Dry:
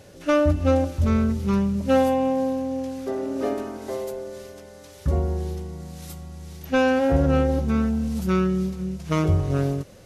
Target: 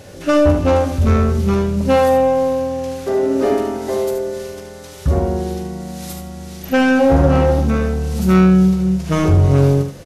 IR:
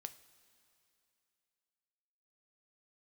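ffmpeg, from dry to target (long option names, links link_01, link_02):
-filter_complex "[0:a]aeval=exprs='0.398*(cos(1*acos(clip(val(0)/0.398,-1,1)))-cos(1*PI/2))+0.0562*(cos(5*acos(clip(val(0)/0.398,-1,1)))-cos(5*PI/2))':channel_layout=same,aecho=1:1:43|74:0.355|0.473,asplit=2[link_01][link_02];[1:a]atrim=start_sample=2205,adelay=86[link_03];[link_02][link_03]afir=irnorm=-1:irlink=0,volume=-9.5dB[link_04];[link_01][link_04]amix=inputs=2:normalize=0,volume=4dB"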